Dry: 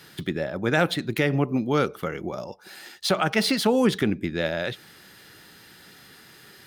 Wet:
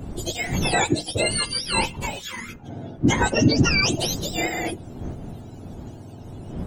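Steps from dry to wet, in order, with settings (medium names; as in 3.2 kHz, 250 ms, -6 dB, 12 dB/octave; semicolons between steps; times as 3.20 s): spectrum inverted on a logarithmic axis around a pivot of 1.1 kHz; wind noise 220 Hz -36 dBFS; trim +3.5 dB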